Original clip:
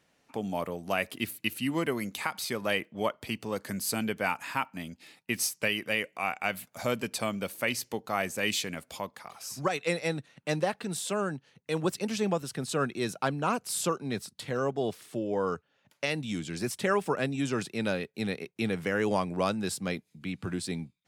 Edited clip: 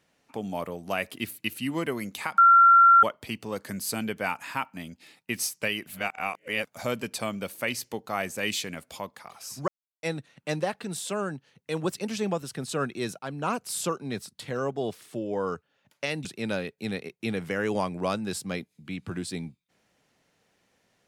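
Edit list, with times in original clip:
2.38–3.03 bleep 1370 Hz -12 dBFS
5.87–6.65 reverse
9.68–10.03 mute
13.19–13.51 fade in equal-power, from -18 dB
16.25–17.61 cut

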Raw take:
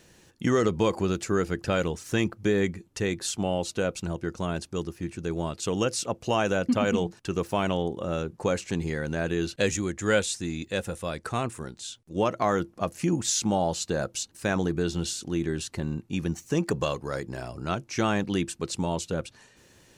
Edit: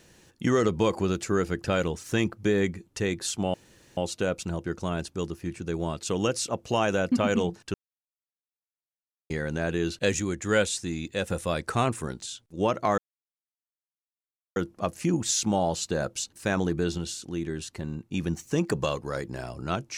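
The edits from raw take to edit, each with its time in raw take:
3.54 insert room tone 0.43 s
7.31–8.87 mute
10.87–11.83 gain +4 dB
12.55 insert silence 1.58 s
14.97–16.11 gain -3.5 dB

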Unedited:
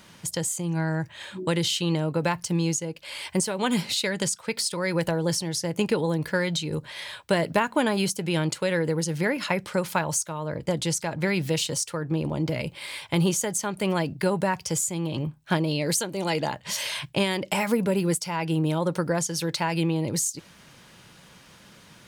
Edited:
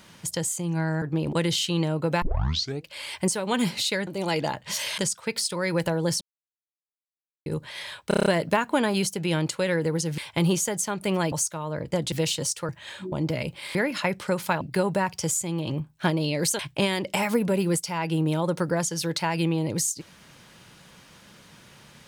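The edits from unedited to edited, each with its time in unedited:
1.02–1.45 swap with 12–12.31
2.34 tape start 0.61 s
5.42–6.67 mute
7.29 stutter 0.03 s, 7 plays
9.21–10.07 swap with 12.94–14.08
10.87–11.43 cut
16.06–16.97 move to 4.19

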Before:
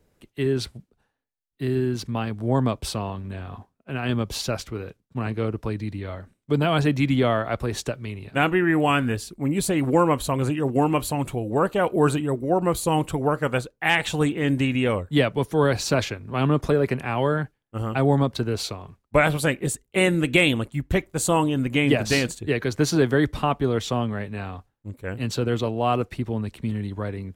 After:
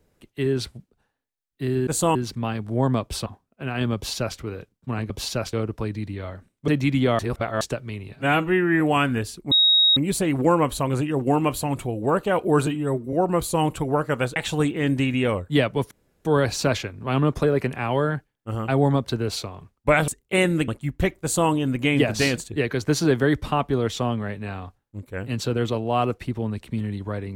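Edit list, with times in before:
2.98–3.54 cut
4.23–4.66 copy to 5.38
6.53–6.84 cut
7.35–7.77 reverse
8.29–8.74 stretch 1.5×
9.45 add tone 3780 Hz -13.5 dBFS 0.45 s
12.15–12.46 stretch 1.5×
13.69–13.97 cut
15.52 insert room tone 0.34 s
19.35–19.71 cut
20.31–20.59 cut
21.13–21.41 copy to 1.87

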